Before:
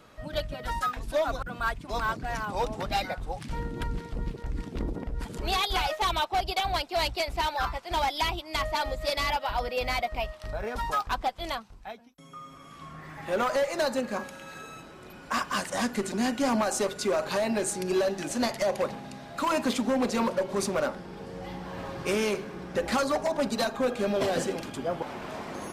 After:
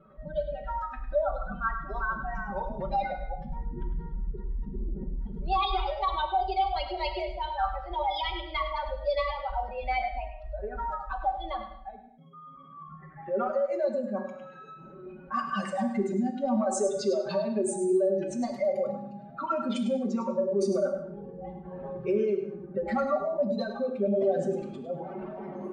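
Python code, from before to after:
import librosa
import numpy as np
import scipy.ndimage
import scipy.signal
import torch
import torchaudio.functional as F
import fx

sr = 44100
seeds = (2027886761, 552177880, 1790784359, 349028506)

y = fx.spec_expand(x, sr, power=2.2)
y = scipy.signal.sosfilt(scipy.signal.butter(2, 10000.0, 'lowpass', fs=sr, output='sos'), y)
y = fx.hum_notches(y, sr, base_hz=60, count=3)
y = fx.env_lowpass(y, sr, base_hz=2100.0, full_db=-24.0)
y = fx.notch(y, sr, hz=1000.0, q=7.8)
y = y + 0.89 * np.pad(y, (int(5.2 * sr / 1000.0), 0))[:len(y)]
y = fx.echo_feedback(y, sr, ms=102, feedback_pct=15, wet_db=-10.5)
y = fx.rev_gated(y, sr, seeds[0], gate_ms=280, shape='falling', drr_db=6.0)
y = y * librosa.db_to_amplitude(-4.0)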